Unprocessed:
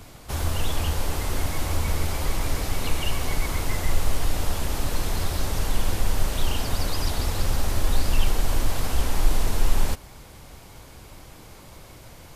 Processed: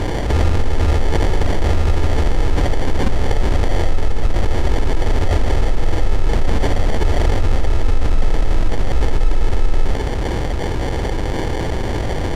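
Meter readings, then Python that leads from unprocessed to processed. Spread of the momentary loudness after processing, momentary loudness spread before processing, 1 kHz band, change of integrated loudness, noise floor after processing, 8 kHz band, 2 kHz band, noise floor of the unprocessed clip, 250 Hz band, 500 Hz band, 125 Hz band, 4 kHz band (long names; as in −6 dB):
4 LU, 19 LU, +7.5 dB, +7.5 dB, −20 dBFS, −4.0 dB, +6.0 dB, −46 dBFS, +10.5 dB, +12.0 dB, +9.5 dB, +1.5 dB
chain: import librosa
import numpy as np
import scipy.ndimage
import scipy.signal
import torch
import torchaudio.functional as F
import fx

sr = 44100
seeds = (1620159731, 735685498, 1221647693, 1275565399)

y = x + 0.84 * np.pad(x, (int(2.5 * sr / 1000.0), 0))[:len(x)]
y = fx.sample_hold(y, sr, seeds[0], rate_hz=1300.0, jitter_pct=0)
y = fx.air_absorb(y, sr, metres=56.0)
y = fx.env_flatten(y, sr, amount_pct=70)
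y = F.gain(torch.from_numpy(y), -3.0).numpy()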